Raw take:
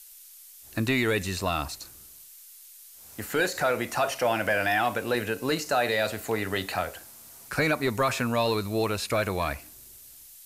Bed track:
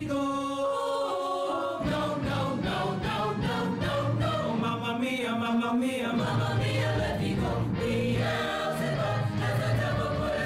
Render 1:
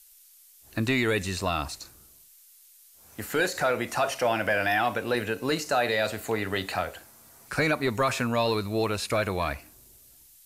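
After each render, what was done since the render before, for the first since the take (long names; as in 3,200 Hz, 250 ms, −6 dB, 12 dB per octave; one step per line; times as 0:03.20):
noise reduction from a noise print 6 dB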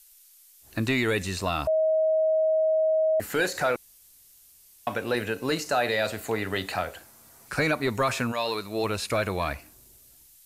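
0:01.67–0:03.20: beep over 633 Hz −19.5 dBFS
0:03.76–0:04.87: fill with room tone
0:08.31–0:08.83: high-pass filter 1,000 Hz → 240 Hz 6 dB per octave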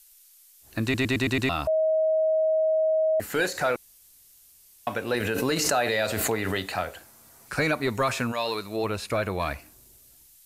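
0:00.83: stutter in place 0.11 s, 6 plays
0:05.20–0:06.60: background raised ahead of every attack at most 24 dB per second
0:08.76–0:09.40: parametric band 7,100 Hz −5 dB 2.8 octaves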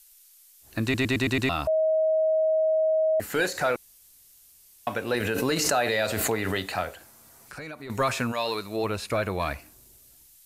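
0:06.94–0:07.90: downward compressor 2.5 to 1, threshold −43 dBFS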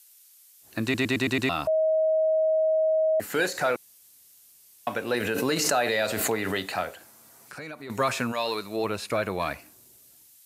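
high-pass filter 130 Hz 12 dB per octave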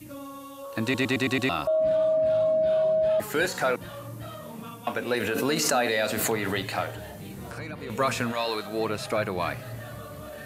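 mix in bed track −11.5 dB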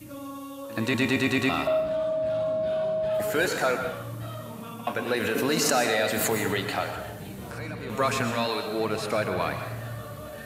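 backwards echo 78 ms −17.5 dB
dense smooth reverb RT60 0.72 s, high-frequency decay 0.8×, pre-delay 105 ms, DRR 6.5 dB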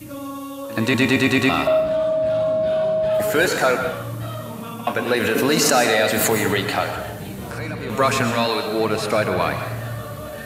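level +7 dB
brickwall limiter −3 dBFS, peak gain reduction 1 dB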